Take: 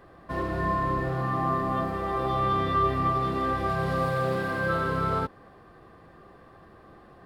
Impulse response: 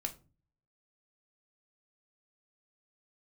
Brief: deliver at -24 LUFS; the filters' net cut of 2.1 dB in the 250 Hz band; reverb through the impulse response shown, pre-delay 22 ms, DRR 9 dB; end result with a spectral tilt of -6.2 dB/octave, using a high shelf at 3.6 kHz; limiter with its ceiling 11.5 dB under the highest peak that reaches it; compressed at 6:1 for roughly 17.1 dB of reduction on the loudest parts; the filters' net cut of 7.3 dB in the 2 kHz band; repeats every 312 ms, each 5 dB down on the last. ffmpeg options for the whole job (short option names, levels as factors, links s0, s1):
-filter_complex "[0:a]equalizer=f=250:t=o:g=-3,equalizer=f=2000:t=o:g=-9,highshelf=f=3600:g=-4.5,acompressor=threshold=0.00708:ratio=6,alimiter=level_in=10.6:limit=0.0631:level=0:latency=1,volume=0.0944,aecho=1:1:312|624|936|1248|1560|1872|2184:0.562|0.315|0.176|0.0988|0.0553|0.031|0.0173,asplit=2[s0][s1];[1:a]atrim=start_sample=2205,adelay=22[s2];[s1][s2]afir=irnorm=-1:irlink=0,volume=0.355[s3];[s0][s3]amix=inputs=2:normalize=0,volume=23.7"